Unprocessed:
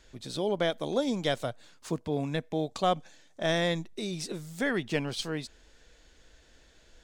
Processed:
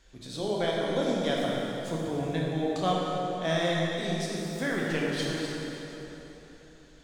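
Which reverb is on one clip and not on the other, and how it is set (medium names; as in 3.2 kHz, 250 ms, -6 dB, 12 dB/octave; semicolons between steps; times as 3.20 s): plate-style reverb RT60 3.6 s, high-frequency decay 0.75×, DRR -4.5 dB; trim -4 dB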